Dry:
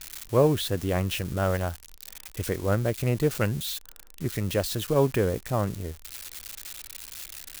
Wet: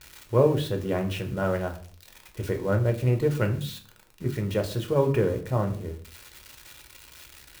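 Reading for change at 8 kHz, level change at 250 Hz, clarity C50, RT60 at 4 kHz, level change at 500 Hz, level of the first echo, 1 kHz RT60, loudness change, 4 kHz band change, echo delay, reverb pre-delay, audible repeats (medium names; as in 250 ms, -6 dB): -9.0 dB, 0.0 dB, 12.5 dB, 0.35 s, +1.0 dB, no echo, 0.40 s, +1.0 dB, -5.5 dB, no echo, 5 ms, no echo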